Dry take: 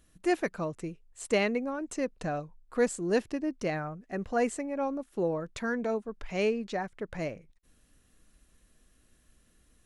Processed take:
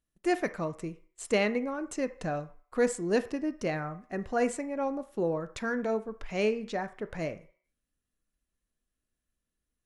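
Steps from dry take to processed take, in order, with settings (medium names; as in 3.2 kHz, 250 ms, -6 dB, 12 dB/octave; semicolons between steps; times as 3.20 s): gate -52 dBFS, range -21 dB; on a send: bass shelf 390 Hz -8 dB + reverberation RT60 0.45 s, pre-delay 17 ms, DRR 11 dB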